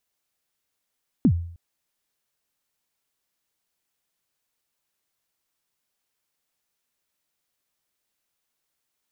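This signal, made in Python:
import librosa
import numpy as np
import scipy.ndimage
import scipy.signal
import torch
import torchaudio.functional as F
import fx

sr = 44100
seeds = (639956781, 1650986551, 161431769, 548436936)

y = fx.drum_kick(sr, seeds[0], length_s=0.31, level_db=-11.0, start_hz=300.0, end_hz=85.0, sweep_ms=72.0, decay_s=0.58, click=False)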